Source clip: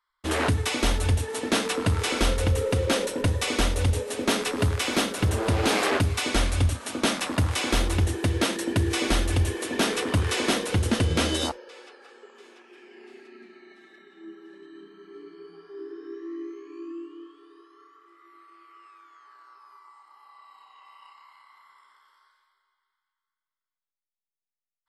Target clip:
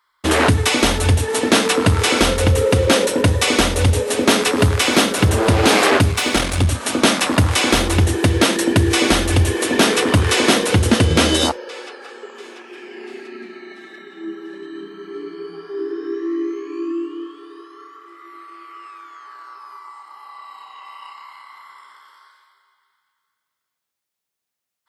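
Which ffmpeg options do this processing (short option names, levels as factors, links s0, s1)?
-filter_complex "[0:a]asettb=1/sr,asplit=3[s0][s1][s2];[s0]atrim=end=6.114[s3];[s1]atrim=start=6.11:end=6.68,asetpts=PTS-STARTPTS,afade=t=in:d=0.004:c=qsin,afade=t=out:st=0.566:d=0.004:c=qsin,aeval=exprs='if(lt(val(0),0),0.447*val(0),val(0))':c=same[s4];[s2]atrim=start=6.676[s5];[s3][s4]acrossfade=d=0.004:c1=hsin:c2=qsin[s6];[s6][s5]acrossfade=d=0.004:c1=qsin:c2=hsin,asplit=2[s7][s8];[s8]acompressor=threshold=0.0282:ratio=6,volume=1[s9];[s7][s9]amix=inputs=2:normalize=0,highpass=73,volume=2.37"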